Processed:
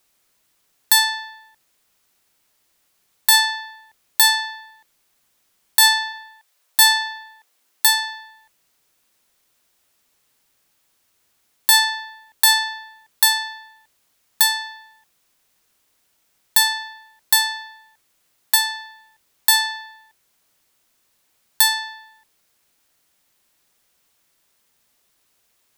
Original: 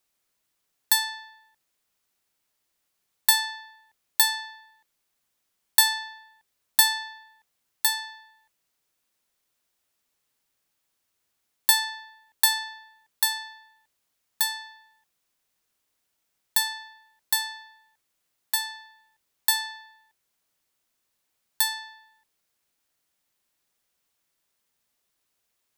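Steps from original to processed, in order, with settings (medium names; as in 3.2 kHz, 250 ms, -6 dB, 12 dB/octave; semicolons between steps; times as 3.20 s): 6.12–8.14 s: high-pass 650 Hz -> 180 Hz 24 dB/octave; loudness maximiser +12 dB; trim -1 dB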